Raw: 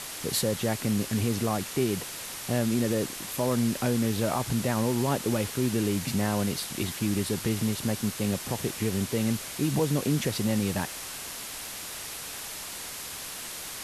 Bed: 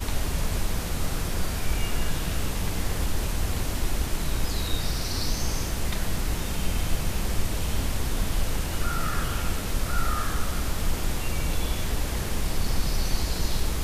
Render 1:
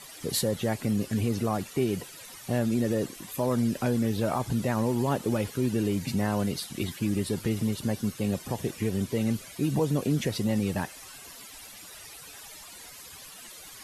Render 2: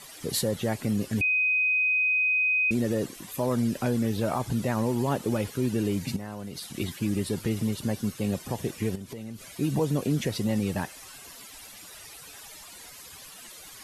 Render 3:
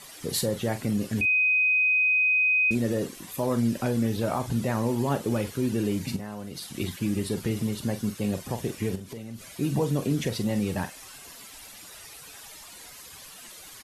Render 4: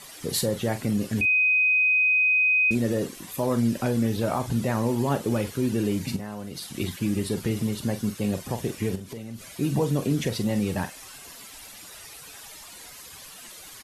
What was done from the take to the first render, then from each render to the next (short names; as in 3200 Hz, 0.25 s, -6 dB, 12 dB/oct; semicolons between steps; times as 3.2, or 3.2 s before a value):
denoiser 14 dB, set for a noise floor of -39 dBFS
1.21–2.71 bleep 2510 Hz -21 dBFS; 6.16–6.74 compressor, threshold -33 dBFS; 8.95–9.43 compressor, threshold -35 dBFS
doubler 43 ms -11 dB
gain +1.5 dB